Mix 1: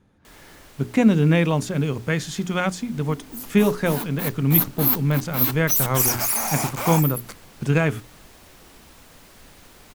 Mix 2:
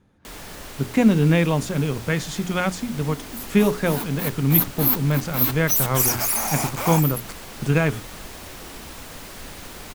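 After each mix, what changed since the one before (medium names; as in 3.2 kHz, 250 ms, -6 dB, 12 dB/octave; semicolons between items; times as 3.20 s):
first sound +10.5 dB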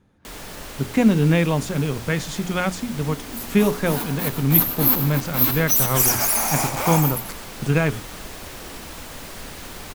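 reverb: on, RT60 0.85 s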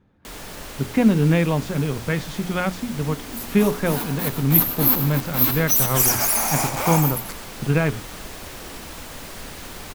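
speech: add distance through air 140 m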